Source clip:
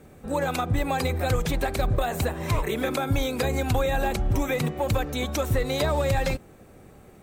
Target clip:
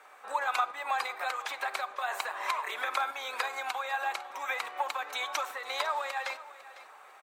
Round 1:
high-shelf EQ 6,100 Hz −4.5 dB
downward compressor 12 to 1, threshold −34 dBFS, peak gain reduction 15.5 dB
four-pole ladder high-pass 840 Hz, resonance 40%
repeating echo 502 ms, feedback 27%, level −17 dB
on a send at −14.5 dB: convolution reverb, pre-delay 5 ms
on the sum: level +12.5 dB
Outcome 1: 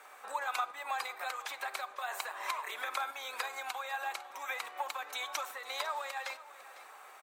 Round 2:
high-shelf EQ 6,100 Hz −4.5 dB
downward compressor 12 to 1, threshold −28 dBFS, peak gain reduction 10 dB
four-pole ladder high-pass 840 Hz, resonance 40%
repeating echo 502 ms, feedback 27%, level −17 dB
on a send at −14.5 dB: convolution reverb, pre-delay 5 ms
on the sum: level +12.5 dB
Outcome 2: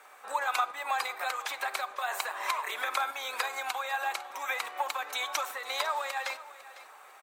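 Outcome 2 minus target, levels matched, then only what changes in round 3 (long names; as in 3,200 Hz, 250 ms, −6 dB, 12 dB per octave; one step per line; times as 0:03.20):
8,000 Hz band +4.0 dB
change: high-shelf EQ 6,100 Hz −13 dB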